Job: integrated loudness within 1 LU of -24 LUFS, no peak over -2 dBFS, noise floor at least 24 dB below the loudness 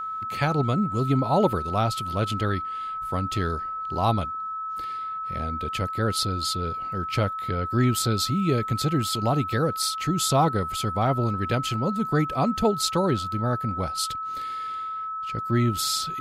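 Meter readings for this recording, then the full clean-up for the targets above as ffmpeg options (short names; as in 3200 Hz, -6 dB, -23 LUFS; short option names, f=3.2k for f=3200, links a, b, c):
steady tone 1300 Hz; tone level -29 dBFS; loudness -25.5 LUFS; peak -9.5 dBFS; loudness target -24.0 LUFS
-> -af "bandreject=f=1.3k:w=30"
-af "volume=1.5dB"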